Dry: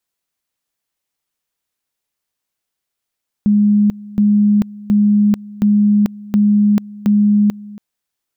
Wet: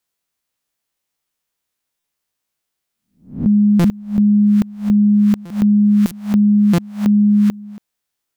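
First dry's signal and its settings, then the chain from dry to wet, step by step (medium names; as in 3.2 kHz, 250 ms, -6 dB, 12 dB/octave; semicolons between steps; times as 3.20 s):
two-level tone 207 Hz -8.5 dBFS, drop 21 dB, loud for 0.44 s, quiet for 0.28 s, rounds 6
reverse spectral sustain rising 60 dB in 0.38 s; buffer glitch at 1.99/3.79/5.45/6.06/6.73 s, samples 256, times 8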